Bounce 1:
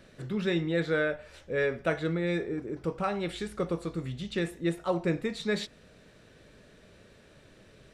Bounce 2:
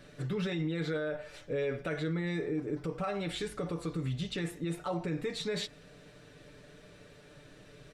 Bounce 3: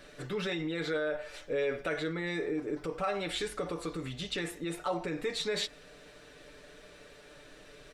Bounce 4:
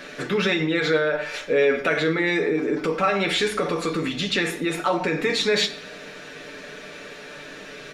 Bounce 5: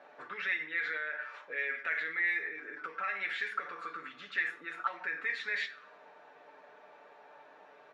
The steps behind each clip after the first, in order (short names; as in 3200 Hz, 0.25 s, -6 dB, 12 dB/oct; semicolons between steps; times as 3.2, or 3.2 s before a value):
comb 6.8 ms, depth 67%; limiter -26 dBFS, peak gain reduction 12 dB
bell 130 Hz -12.5 dB 1.8 oct; gain +4 dB
in parallel at -1 dB: limiter -31.5 dBFS, peak gain reduction 10 dB; on the sum: reverb RT60 0.70 s, pre-delay 3 ms, DRR 8.5 dB; gain +4.5 dB
auto-wah 750–1900 Hz, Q 5, up, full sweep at -18.5 dBFS; gain -2.5 dB